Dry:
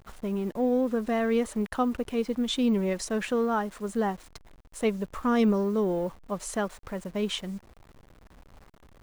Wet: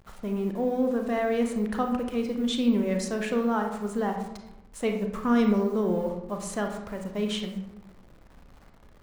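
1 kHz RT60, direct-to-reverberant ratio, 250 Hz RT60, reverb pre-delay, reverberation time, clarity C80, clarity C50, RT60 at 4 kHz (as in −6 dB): 0.85 s, 3.5 dB, 1.1 s, 28 ms, 0.95 s, 9.0 dB, 6.0 dB, 0.50 s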